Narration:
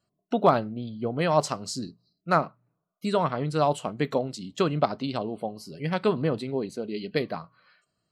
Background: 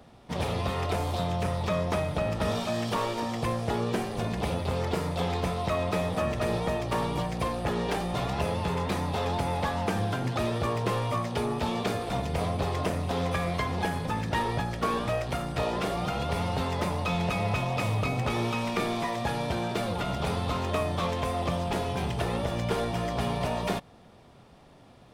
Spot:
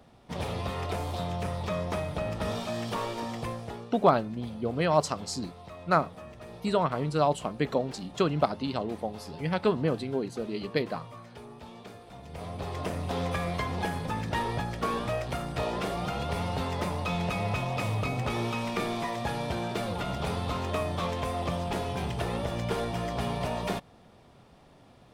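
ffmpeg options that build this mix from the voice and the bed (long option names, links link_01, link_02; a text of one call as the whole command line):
ffmpeg -i stem1.wav -i stem2.wav -filter_complex "[0:a]adelay=3600,volume=-1.5dB[link_01];[1:a]volume=11.5dB,afade=type=out:start_time=3.31:duration=0.59:silence=0.211349,afade=type=in:start_time=12.19:duration=0.94:silence=0.177828[link_02];[link_01][link_02]amix=inputs=2:normalize=0" out.wav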